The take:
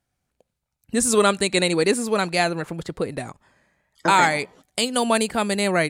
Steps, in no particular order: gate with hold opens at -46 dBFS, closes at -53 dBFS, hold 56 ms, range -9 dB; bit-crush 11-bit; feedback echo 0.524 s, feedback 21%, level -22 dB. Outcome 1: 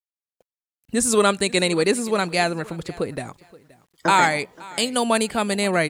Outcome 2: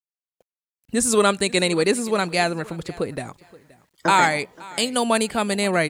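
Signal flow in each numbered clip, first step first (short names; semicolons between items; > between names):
gate with hold > feedback echo > bit-crush; feedback echo > gate with hold > bit-crush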